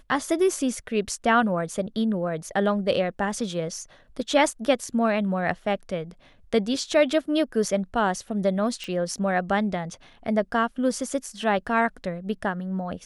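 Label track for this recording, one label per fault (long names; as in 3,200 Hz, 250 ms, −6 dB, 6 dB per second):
8.840000	8.840000	click −20 dBFS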